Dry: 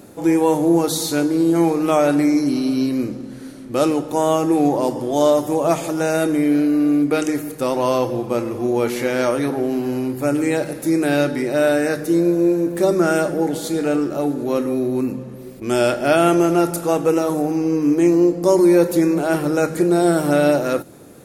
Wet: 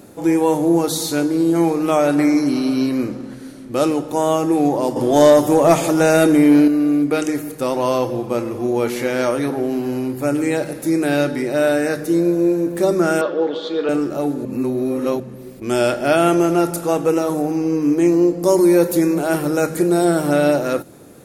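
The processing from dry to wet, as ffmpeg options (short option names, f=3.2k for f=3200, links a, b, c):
-filter_complex "[0:a]asettb=1/sr,asplit=3[a][b][c];[a]atrim=end=2.184[d];[b]atrim=start=2.18:end=3.35,asetpts=PTS-STARTPTS,afade=t=in:d=0.004:c=qsin,afade=t=out:st=1.166:d=0.004:c=qsin,equalizer=f=1.2k:w=0.64:g=6.5[e];[c]atrim=start=3.346[f];[d][e]acrossfade=d=0.004:c1=hsin:c2=qsin[g];[g][f]acrossfade=d=0.004:c1=qsin:c2=hsin,asettb=1/sr,asplit=3[h][i][j];[h]atrim=end=4.964[k];[i]atrim=start=4.96:end=6.68,asetpts=PTS-STARTPTS,afade=t=in:d=0.004:c=qsin,afade=t=out:st=1.716:d=0.004:c=qsin,acontrast=59[l];[j]atrim=start=6.676[m];[k][l]acrossfade=d=0.004:c1=hsin:c2=qsin[n];[n][m]acrossfade=d=0.004:c1=qsin:c2=hsin,asettb=1/sr,asplit=3[o][p][q];[o]atrim=end=13.214[r];[p]atrim=start=13.21:end=13.89,asetpts=PTS-STARTPTS,afade=t=in:d=0.004:c=qsin,afade=t=out:st=0.676:d=0.004:c=qsin,highpass=350,equalizer=f=490:t=q:w=4:g=6,equalizer=f=750:t=q:w=4:g=-6,equalizer=f=1.1k:t=q:w=4:g=9,equalizer=f=2.1k:t=q:w=4:g=-5,equalizer=f=3.4k:t=q:w=4:g=9,lowpass=f=4.1k:w=0.5412,lowpass=f=4.1k:w=1.3066[s];[q]atrim=start=13.886[t];[r][s]acrossfade=d=0.004:c1=hsin:c2=qsin[u];[u][t]acrossfade=d=0.004:c1=qsin:c2=hsin,asettb=1/sr,asplit=3[v][w][x];[v]atrim=end=18.394[y];[w]atrim=start=18.39:end=20.05,asetpts=PTS-STARTPTS,afade=t=in:d=0.004:c=qsin,afade=t=out:st=1.656:d=0.004:c=qsin,highshelf=f=10k:g=9[z];[x]atrim=start=20.046[aa];[y][z]acrossfade=d=0.004:c1=hsin:c2=qsin[ab];[ab][aa]acrossfade=d=0.004:c1=qsin:c2=hsin,asplit=3[ac][ad][ae];[ac]atrim=end=14.452[af];[ad]atrim=start=14.448:end=15.202,asetpts=PTS-STARTPTS,areverse[ag];[ae]atrim=start=15.198[ah];[af][ag]acrossfade=d=0.004:c1=hsin:c2=hsin[ai];[ai][ah]acrossfade=d=0.004:c1=hsin:c2=hsin"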